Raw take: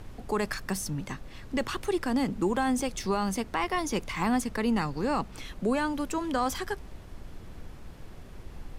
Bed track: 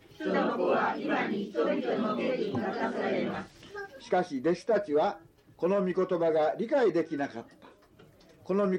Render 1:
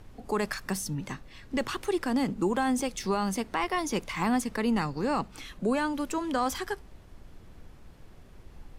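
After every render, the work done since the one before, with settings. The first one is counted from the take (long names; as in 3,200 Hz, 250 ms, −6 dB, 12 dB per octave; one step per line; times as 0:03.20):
noise reduction from a noise print 6 dB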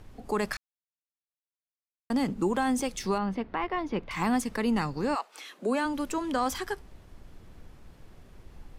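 0:00.57–0:02.10: silence
0:03.18–0:04.11: high-frequency loss of the air 360 metres
0:05.14–0:05.84: high-pass filter 700 Hz → 170 Hz 24 dB per octave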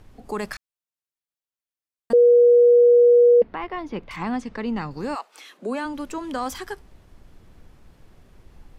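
0:02.13–0:03.42: beep over 481 Hz −10 dBFS
0:04.16–0:04.91: high-frequency loss of the air 130 metres
0:05.57–0:06.23: high-shelf EQ 7,200 Hz −5.5 dB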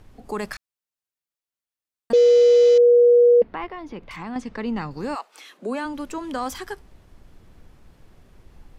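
0:02.12–0:02.78: variable-slope delta modulation 32 kbit/s
0:03.66–0:04.36: downward compressor 2 to 1, threshold −34 dBFS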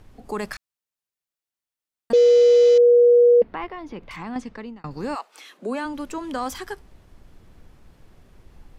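0:04.36–0:04.84: fade out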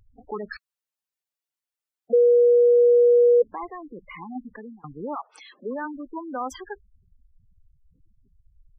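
gate on every frequency bin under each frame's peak −10 dB strong
low-shelf EQ 240 Hz −9 dB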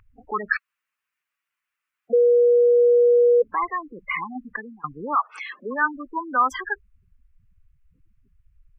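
flat-topped bell 1,700 Hz +15.5 dB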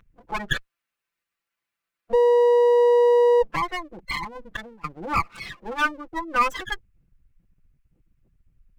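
lower of the sound and its delayed copy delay 5.9 ms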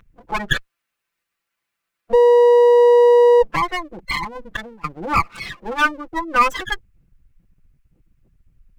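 level +5.5 dB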